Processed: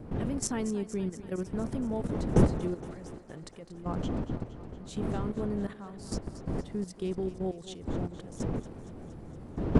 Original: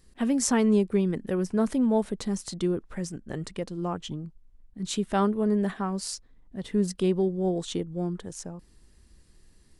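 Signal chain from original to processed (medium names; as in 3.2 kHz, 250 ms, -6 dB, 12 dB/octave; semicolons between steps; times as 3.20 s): wind noise 260 Hz -24 dBFS; level held to a coarse grid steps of 13 dB; thinning echo 233 ms, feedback 70%, high-pass 280 Hz, level -13.5 dB; trim -5 dB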